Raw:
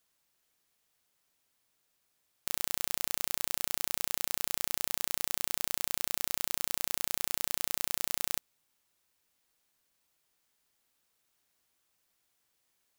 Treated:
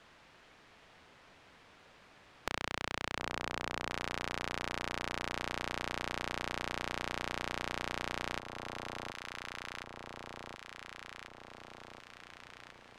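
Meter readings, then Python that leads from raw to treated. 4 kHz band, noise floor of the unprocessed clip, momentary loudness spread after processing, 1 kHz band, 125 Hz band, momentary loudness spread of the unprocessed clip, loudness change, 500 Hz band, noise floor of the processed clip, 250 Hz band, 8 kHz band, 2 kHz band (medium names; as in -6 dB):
-4.0 dB, -77 dBFS, 21 LU, +5.0 dB, +4.5 dB, 1 LU, -8.0 dB, +5.5 dB, -61 dBFS, +5.5 dB, -16.0 dB, +3.0 dB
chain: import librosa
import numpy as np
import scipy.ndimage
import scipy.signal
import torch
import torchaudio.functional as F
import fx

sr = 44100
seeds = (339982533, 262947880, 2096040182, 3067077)

p1 = scipy.signal.sosfilt(scipy.signal.butter(2, 2400.0, 'lowpass', fs=sr, output='sos'), x)
p2 = p1 + fx.echo_alternate(p1, sr, ms=721, hz=1100.0, feedback_pct=54, wet_db=-6.5, dry=0)
p3 = fx.band_squash(p2, sr, depth_pct=70)
y = p3 * 10.0 ** (4.0 / 20.0)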